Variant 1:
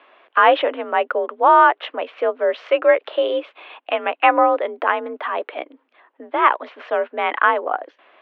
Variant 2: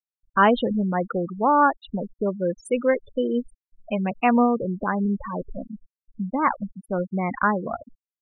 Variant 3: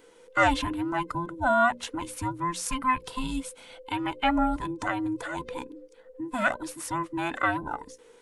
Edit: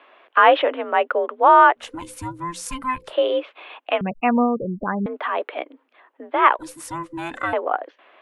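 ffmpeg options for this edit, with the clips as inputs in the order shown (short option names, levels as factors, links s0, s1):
-filter_complex "[2:a]asplit=2[s0][s1];[0:a]asplit=4[s2][s3][s4][s5];[s2]atrim=end=1.91[s6];[s0]atrim=start=1.75:end=3.16[s7];[s3]atrim=start=3:end=4.012[s8];[1:a]atrim=start=4.008:end=5.062[s9];[s4]atrim=start=5.058:end=6.592[s10];[s1]atrim=start=6.588:end=7.532[s11];[s5]atrim=start=7.528[s12];[s6][s7]acrossfade=d=0.16:c1=tri:c2=tri[s13];[s13][s8]acrossfade=d=0.16:c1=tri:c2=tri[s14];[s14][s9]acrossfade=d=0.004:c1=hsin:c2=hsin[s15];[s15][s10]acrossfade=d=0.004:c1=hsin:c2=hsin[s16];[s16][s11]acrossfade=d=0.004:c1=hsin:c2=hsin[s17];[s17][s12]acrossfade=d=0.004:c1=hsin:c2=hsin"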